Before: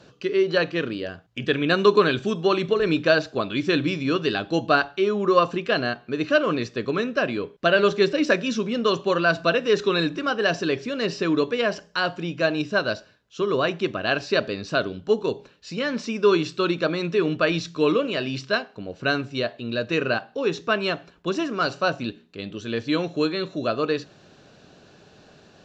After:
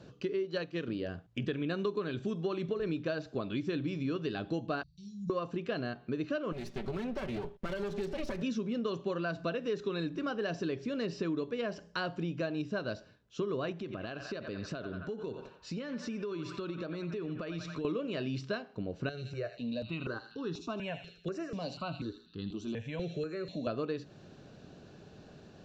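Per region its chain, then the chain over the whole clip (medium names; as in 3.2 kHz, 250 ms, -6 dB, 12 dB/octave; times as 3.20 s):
0.45–0.88 s: treble shelf 3.4 kHz +8 dB + upward expansion, over -33 dBFS
4.83–5.30 s: Chebyshev band-stop 160–4800 Hz, order 4 + distance through air 59 m + flutter echo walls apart 8.6 m, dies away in 0.36 s
6.52–8.42 s: comb filter that takes the minimum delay 5.2 ms + compression 3:1, threshold -30 dBFS
13.72–17.85 s: band-passed feedback delay 89 ms, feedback 64%, band-pass 1.4 kHz, level -9.5 dB + compression, threshold -33 dBFS
19.09–23.67 s: feedback echo behind a high-pass 80 ms, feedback 46%, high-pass 3 kHz, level -5.5 dB + compression 1.5:1, threshold -33 dBFS + stepped phaser 4.1 Hz 270–2300 Hz
whole clip: bass shelf 490 Hz +10 dB; compression 5:1, threshold -24 dBFS; trim -8 dB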